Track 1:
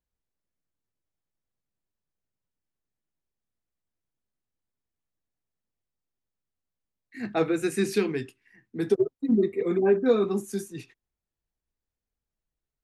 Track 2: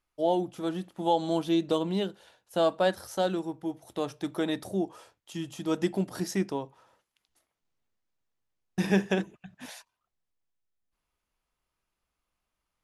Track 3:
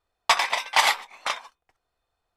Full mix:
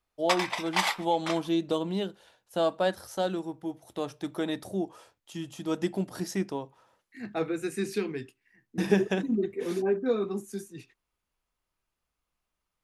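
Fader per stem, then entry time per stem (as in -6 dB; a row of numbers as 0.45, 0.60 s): -5.5, -1.5, -7.5 dB; 0.00, 0.00, 0.00 s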